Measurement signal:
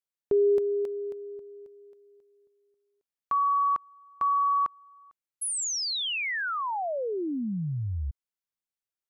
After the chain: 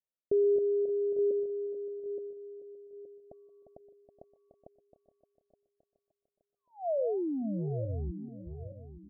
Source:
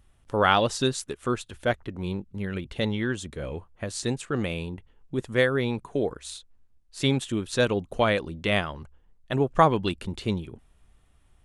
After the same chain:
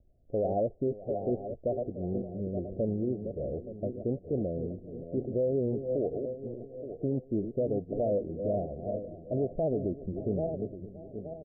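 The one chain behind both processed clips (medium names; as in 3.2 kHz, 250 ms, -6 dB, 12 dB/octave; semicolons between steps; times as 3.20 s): backward echo that repeats 436 ms, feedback 53%, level -9 dB; steep low-pass 690 Hz 96 dB/octave; bass shelf 460 Hz -9.5 dB; peak limiter -26 dBFS; delay 571 ms -17.5 dB; trim +4.5 dB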